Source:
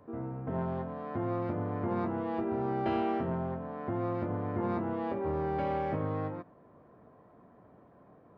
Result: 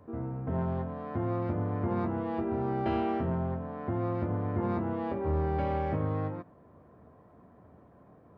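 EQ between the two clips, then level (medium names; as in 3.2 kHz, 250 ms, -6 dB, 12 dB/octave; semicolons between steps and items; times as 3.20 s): tone controls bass +3 dB, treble 0 dB; peaking EQ 78 Hz +8.5 dB 0.42 oct; 0.0 dB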